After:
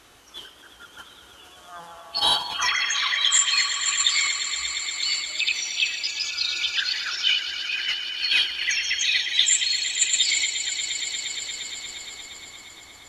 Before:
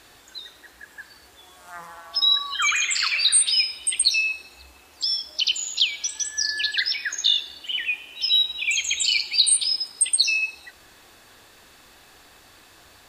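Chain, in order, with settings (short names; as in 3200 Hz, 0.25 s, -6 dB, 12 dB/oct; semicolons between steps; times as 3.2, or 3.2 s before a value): swelling echo 0.117 s, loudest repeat 5, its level -13.5 dB; formant shift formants -3 st; gain -1.5 dB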